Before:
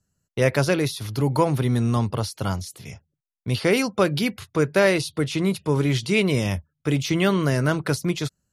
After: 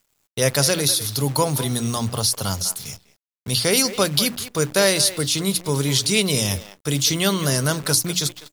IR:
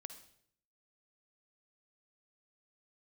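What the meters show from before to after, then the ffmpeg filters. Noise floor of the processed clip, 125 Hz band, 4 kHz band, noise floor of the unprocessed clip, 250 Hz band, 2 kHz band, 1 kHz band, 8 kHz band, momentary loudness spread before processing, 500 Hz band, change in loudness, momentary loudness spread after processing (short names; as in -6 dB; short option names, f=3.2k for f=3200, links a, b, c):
-73 dBFS, -1.0 dB, +10.5 dB, -79 dBFS, -2.0 dB, 0.0 dB, 0.0 dB, +15.0 dB, 8 LU, -0.5 dB, +3.0 dB, 7 LU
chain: -filter_complex "[0:a]equalizer=f=340:t=o:w=0.3:g=-5.5,bandreject=f=60:t=h:w=6,bandreject=f=120:t=h:w=6,bandreject=f=180:t=h:w=6,bandreject=f=240:t=h:w=6,bandreject=f=300:t=h:w=6,asplit=2[a][b];[b]adelay=200,highpass=300,lowpass=3.4k,asoftclip=type=hard:threshold=-14.5dB,volume=-12dB[c];[a][c]amix=inputs=2:normalize=0,aexciter=amount=4.1:drive=6.6:freq=3.4k,acrusher=bits=7:dc=4:mix=0:aa=0.000001"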